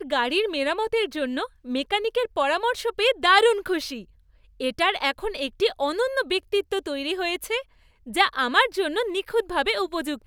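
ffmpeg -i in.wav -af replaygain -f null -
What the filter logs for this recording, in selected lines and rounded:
track_gain = +3.1 dB
track_peak = 0.428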